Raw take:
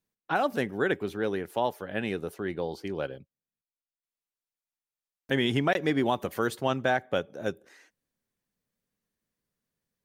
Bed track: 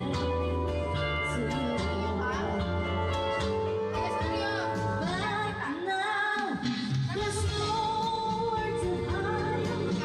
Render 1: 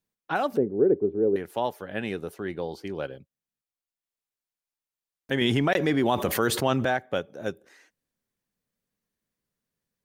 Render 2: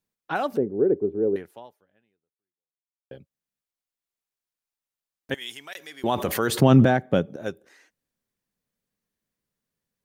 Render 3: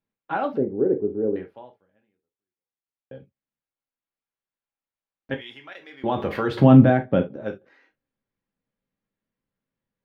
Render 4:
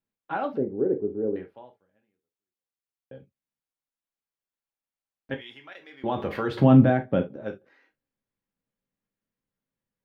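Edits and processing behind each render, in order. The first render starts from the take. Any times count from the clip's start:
0.57–1.36 synth low-pass 410 Hz, resonance Q 2.8; 5.41–6.85 fast leveller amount 70%
1.33–3.11 fade out exponential; 5.34–6.04 differentiator; 6.6–7.36 bell 170 Hz +15 dB 2.5 oct
air absorption 340 m; non-linear reverb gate 90 ms falling, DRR 3 dB
gain -3.5 dB

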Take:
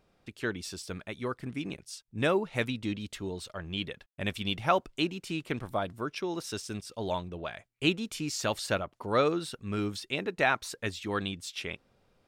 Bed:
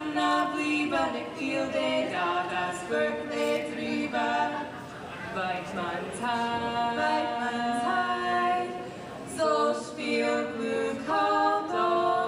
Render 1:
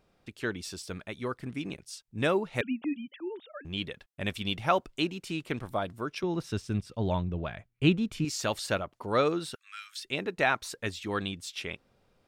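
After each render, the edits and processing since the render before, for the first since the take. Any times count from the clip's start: 2.61–3.65 sine-wave speech; 6.23–8.25 tone controls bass +11 dB, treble -9 dB; 9.55–10.05 steep high-pass 1400 Hz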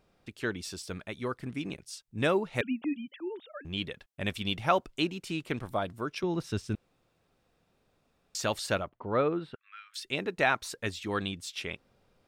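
6.75–8.35 room tone; 8.89–9.94 air absorption 480 m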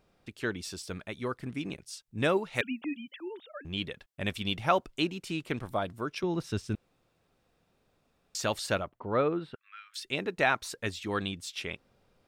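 2.37–3.4 tilt shelf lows -4 dB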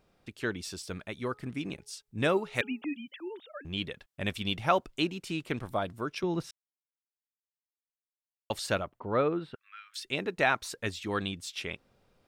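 1.15–2.86 de-hum 420.2 Hz, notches 3; 6.51–8.5 mute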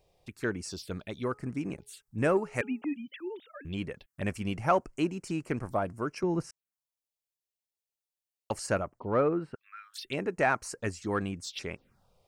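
envelope phaser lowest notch 230 Hz, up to 3600 Hz, full sweep at -33.5 dBFS; in parallel at -10 dB: soft clip -26 dBFS, distortion -11 dB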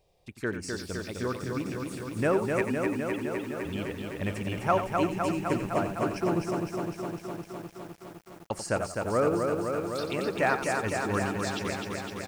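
on a send: echo 89 ms -10 dB; on the sum: lo-fi delay 0.255 s, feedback 80%, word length 9-bit, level -4 dB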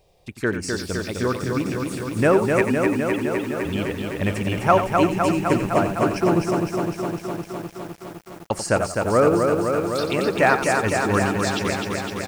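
gain +8.5 dB

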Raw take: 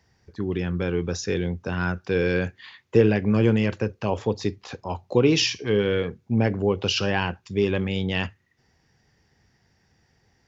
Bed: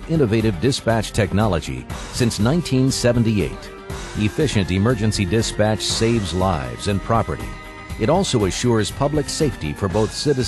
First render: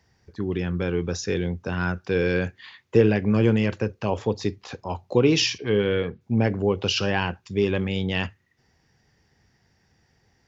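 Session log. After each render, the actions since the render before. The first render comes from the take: 5.58–6.21 LPF 4500 Hz 24 dB/oct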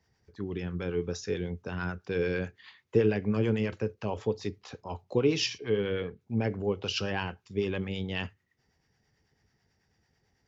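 harmonic tremolo 9.1 Hz, depth 50%, crossover 660 Hz; resonator 430 Hz, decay 0.15 s, harmonics odd, mix 50%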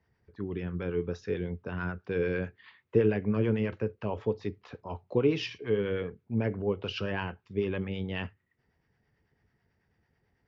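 LPF 2600 Hz 12 dB/oct; notch 790 Hz, Q 17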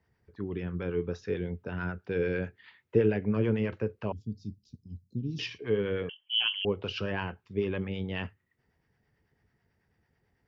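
1.42–3.33 notch 1100 Hz, Q 6.9; 4.12–5.39 elliptic band-stop 230–5000 Hz, stop band 50 dB; 6.09–6.65 inverted band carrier 3200 Hz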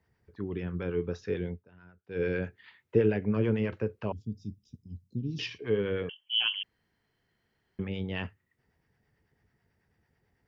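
1.49–2.23 dip -21.5 dB, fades 0.16 s; 4.25–4.94 Butterworth band-stop 4300 Hz, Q 4.9; 6.63–7.79 room tone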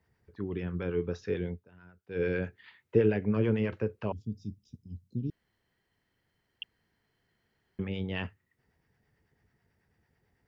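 5.3–6.62 room tone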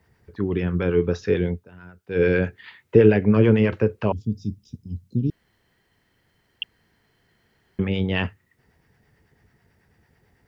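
gain +11 dB; limiter -2 dBFS, peak gain reduction 2 dB

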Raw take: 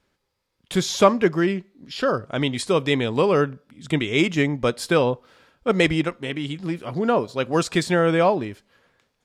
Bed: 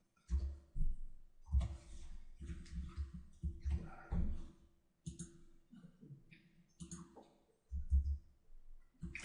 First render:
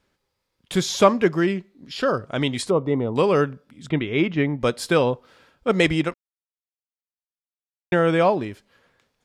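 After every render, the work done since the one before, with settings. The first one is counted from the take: 2.7–3.16 polynomial smoothing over 65 samples; 3.89–4.61 air absorption 310 m; 6.14–7.92 mute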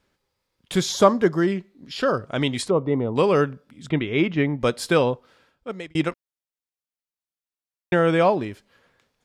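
0.92–1.52 bell 2500 Hz -13 dB 0.39 oct; 2.68–3.17 air absorption 140 m; 5–5.95 fade out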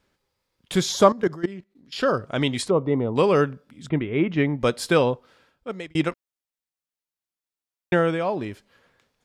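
1.12–1.93 level quantiser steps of 18 dB; 3.9–4.32 air absorption 470 m; 7.96–8.5 dip -8 dB, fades 0.24 s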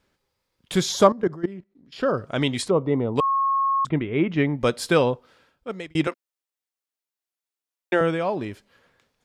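1.07–2.18 high shelf 2000 Hz -11 dB; 3.2–3.85 bleep 1090 Hz -18.5 dBFS; 6.07–8.01 HPF 250 Hz 24 dB/oct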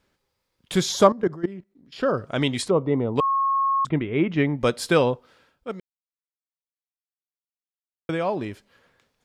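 2.85–3.56 air absorption 53 m; 5.8–8.09 mute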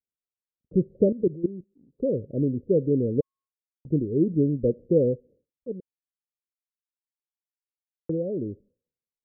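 steep low-pass 540 Hz 72 dB/oct; expander -50 dBFS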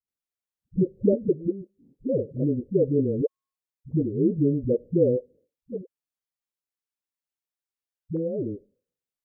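dispersion highs, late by 79 ms, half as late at 310 Hz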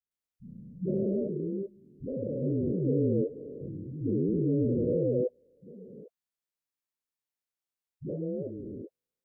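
stepped spectrum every 0.4 s; dispersion highs, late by 0.114 s, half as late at 360 Hz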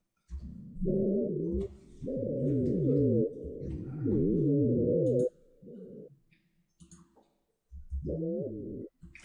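add bed -3.5 dB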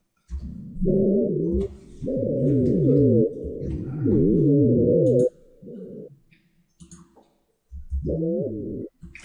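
gain +9 dB

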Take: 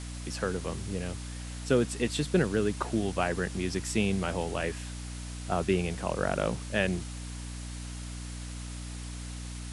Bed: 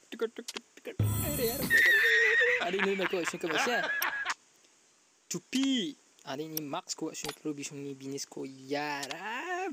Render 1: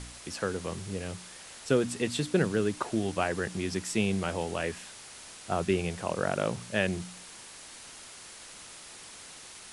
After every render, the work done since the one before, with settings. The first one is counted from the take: de-hum 60 Hz, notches 5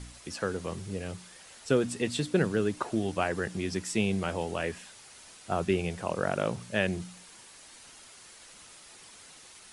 denoiser 6 dB, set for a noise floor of -48 dBFS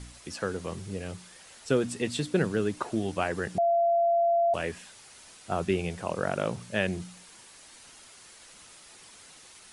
3.58–4.54 bleep 683 Hz -20.5 dBFS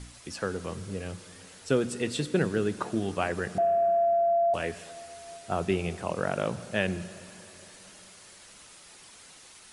plate-style reverb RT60 4 s, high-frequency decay 0.75×, DRR 14.5 dB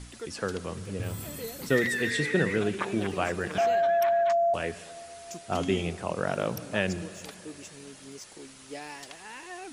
add bed -7 dB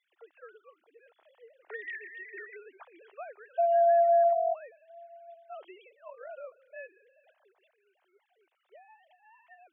sine-wave speech; ladder high-pass 530 Hz, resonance 40%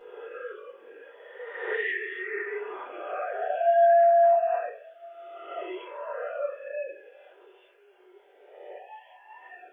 spectral swells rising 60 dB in 1.21 s; shoebox room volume 39 m³, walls mixed, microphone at 1.2 m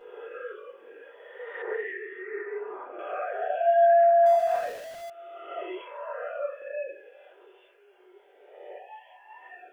1.62–2.99 LPF 1300 Hz; 4.26–5.1 zero-crossing step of -38 dBFS; 5.81–6.62 HPF 490 Hz 24 dB/oct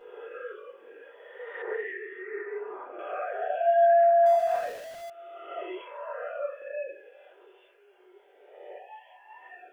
gain -1 dB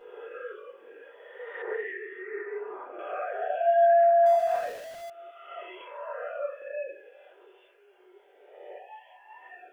5.3–5.79 HPF 1100 Hz -> 630 Hz

